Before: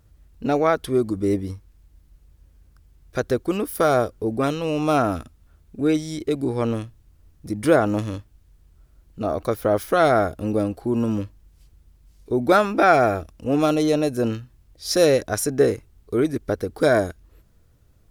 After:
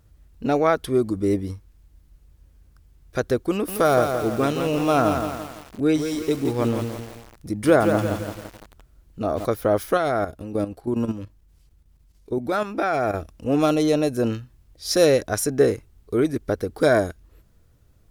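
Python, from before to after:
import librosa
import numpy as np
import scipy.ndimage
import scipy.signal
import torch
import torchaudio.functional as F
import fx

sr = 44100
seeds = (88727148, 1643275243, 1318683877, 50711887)

y = fx.echo_crushed(x, sr, ms=169, feedback_pct=55, bits=6, wet_db=-6, at=(3.51, 9.45))
y = fx.level_steps(y, sr, step_db=11, at=(9.97, 13.14))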